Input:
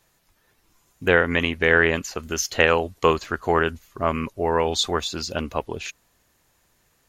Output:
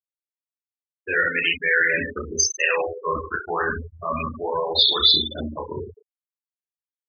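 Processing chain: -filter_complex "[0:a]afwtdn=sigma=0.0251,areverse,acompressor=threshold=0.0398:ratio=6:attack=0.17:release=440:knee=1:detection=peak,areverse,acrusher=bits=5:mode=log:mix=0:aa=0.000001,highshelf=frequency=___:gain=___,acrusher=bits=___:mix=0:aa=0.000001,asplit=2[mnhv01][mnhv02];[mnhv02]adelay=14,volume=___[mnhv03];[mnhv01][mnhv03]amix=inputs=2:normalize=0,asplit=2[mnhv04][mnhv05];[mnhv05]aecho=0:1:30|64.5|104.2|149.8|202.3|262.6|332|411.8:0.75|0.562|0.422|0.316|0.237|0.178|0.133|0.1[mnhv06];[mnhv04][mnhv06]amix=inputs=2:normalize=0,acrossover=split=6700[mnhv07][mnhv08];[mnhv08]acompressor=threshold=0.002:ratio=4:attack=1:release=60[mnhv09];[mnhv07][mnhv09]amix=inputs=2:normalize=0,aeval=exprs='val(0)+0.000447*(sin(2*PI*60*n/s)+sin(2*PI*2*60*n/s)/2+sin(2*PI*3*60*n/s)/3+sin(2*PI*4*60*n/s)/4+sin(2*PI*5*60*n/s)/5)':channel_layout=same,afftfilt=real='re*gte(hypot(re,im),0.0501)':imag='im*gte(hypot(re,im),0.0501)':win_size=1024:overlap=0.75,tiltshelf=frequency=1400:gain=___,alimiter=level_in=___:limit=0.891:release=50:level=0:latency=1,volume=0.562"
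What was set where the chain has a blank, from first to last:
2100, 5.5, 7, 0.447, -8, 7.08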